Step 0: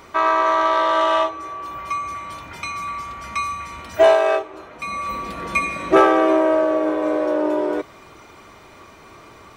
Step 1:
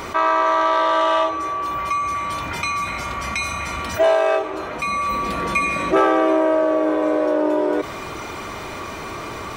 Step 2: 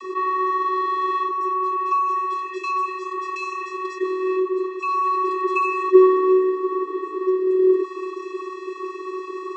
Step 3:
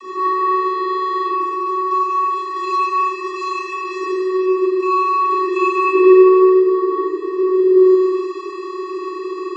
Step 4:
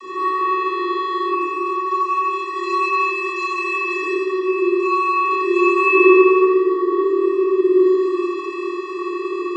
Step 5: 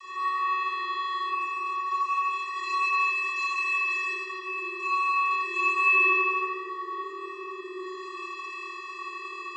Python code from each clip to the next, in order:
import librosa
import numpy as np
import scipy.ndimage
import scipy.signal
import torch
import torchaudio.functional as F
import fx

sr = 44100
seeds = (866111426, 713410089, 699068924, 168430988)

y1 = fx.spec_repair(x, sr, seeds[0], start_s=2.87, length_s=0.91, low_hz=560.0, high_hz=1500.0, source='after')
y1 = fx.env_flatten(y1, sr, amount_pct=50)
y1 = y1 * librosa.db_to_amplitude(-4.0)
y2 = fx.vocoder(y1, sr, bands=32, carrier='square', carrier_hz=373.0)
y3 = fx.rev_schroeder(y2, sr, rt60_s=1.9, comb_ms=25, drr_db=-8.5)
y3 = y3 * librosa.db_to_amplitude(-1.5)
y4 = fx.room_flutter(y3, sr, wall_m=4.4, rt60_s=0.52)
y5 = scipy.signal.sosfilt(scipy.signal.butter(2, 1300.0, 'highpass', fs=sr, output='sos'), y4)
y5 = y5 * librosa.db_to_amplitude(-3.0)